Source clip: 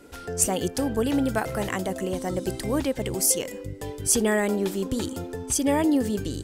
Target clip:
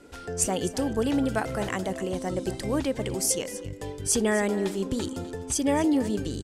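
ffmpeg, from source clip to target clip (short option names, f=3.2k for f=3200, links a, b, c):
-filter_complex "[0:a]lowpass=9.5k,asplit=2[a][b];[b]aecho=0:1:252:0.168[c];[a][c]amix=inputs=2:normalize=0,volume=-1.5dB"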